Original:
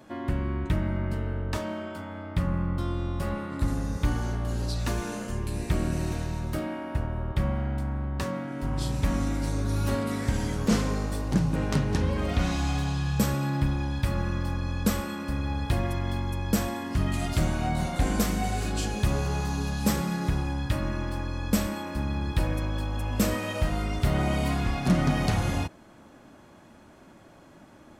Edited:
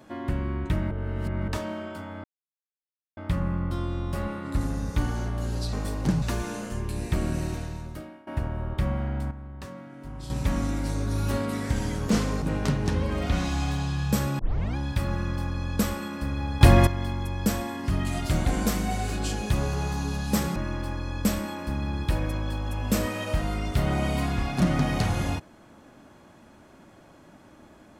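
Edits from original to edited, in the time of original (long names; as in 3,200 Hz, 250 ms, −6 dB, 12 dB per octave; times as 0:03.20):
0:00.91–0:01.48: reverse
0:02.24: splice in silence 0.93 s
0:05.96–0:06.85: fade out, to −21 dB
0:07.89–0:08.88: clip gain −9.5 dB
0:11.00–0:11.49: move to 0:04.80
0:13.46: tape start 0.37 s
0:15.68–0:15.94: clip gain +11.5 dB
0:17.52–0:17.98: remove
0:20.09–0:20.84: remove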